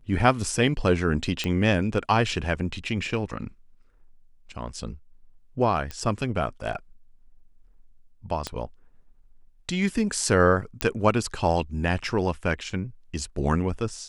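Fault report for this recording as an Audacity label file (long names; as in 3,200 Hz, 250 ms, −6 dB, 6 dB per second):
1.440000	1.440000	click −13 dBFS
5.910000	5.910000	click −18 dBFS
8.470000	8.470000	click −15 dBFS
10.810000	10.810000	click −8 dBFS
12.700000	12.700000	drop-out 3.6 ms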